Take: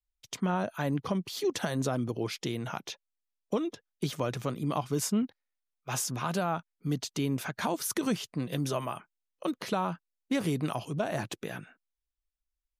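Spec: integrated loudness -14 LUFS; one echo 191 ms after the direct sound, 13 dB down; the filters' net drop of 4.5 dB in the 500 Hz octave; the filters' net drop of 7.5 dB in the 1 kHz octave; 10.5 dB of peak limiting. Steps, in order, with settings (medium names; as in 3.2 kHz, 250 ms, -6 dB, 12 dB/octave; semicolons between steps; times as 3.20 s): peaking EQ 500 Hz -3.5 dB; peaking EQ 1 kHz -9 dB; peak limiter -29 dBFS; delay 191 ms -13 dB; trim +25 dB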